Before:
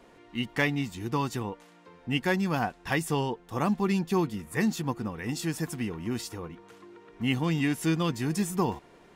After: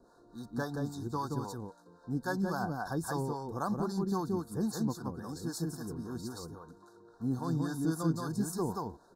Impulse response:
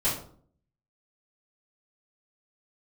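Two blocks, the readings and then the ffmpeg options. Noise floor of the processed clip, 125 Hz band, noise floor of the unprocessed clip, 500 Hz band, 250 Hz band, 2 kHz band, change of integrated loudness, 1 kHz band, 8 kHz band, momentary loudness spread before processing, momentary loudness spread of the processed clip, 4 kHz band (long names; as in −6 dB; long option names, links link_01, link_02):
−62 dBFS, −5.0 dB, −56 dBFS, −5.5 dB, −5.0 dB, −12.0 dB, −6.0 dB, −5.0 dB, −5.0 dB, 11 LU, 11 LU, −12.0 dB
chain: -filter_complex "[0:a]asuperstop=centerf=2500:order=20:qfactor=1.2,aecho=1:1:176:0.708,acrossover=split=540[link_01][link_02];[link_01]aeval=exprs='val(0)*(1-0.7/2+0.7/2*cos(2*PI*3.7*n/s))':channel_layout=same[link_03];[link_02]aeval=exprs='val(0)*(1-0.7/2-0.7/2*cos(2*PI*3.7*n/s))':channel_layout=same[link_04];[link_03][link_04]amix=inputs=2:normalize=0,volume=-3.5dB"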